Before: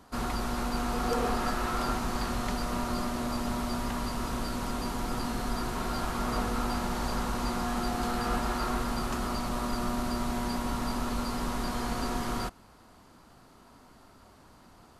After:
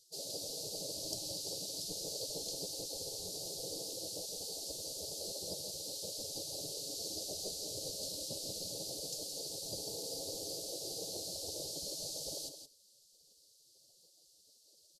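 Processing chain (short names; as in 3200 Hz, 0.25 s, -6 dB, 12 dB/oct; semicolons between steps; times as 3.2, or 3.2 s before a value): spectral gate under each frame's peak -20 dB weak; Chebyshev band-stop 580–4500 Hz, order 3; high shelf 11000 Hz -10 dB; echo 0.169 s -8.5 dB; gain +6 dB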